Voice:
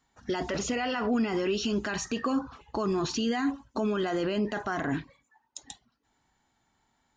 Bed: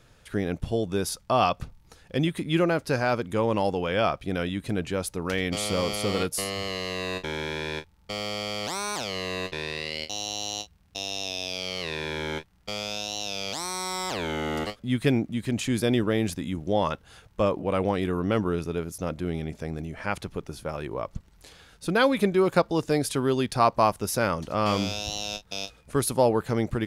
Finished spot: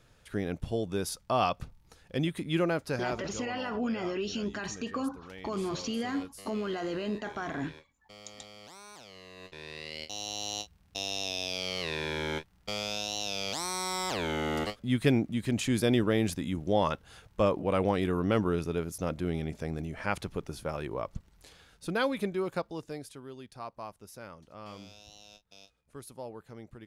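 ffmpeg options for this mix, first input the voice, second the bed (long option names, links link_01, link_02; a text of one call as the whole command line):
ffmpeg -i stem1.wav -i stem2.wav -filter_complex "[0:a]adelay=2700,volume=-5dB[link_01];[1:a]volume=12dB,afade=type=out:start_time=2.75:duration=0.69:silence=0.199526,afade=type=in:start_time=9.35:duration=1.42:silence=0.141254,afade=type=out:start_time=20.64:duration=2.56:silence=0.112202[link_02];[link_01][link_02]amix=inputs=2:normalize=0" out.wav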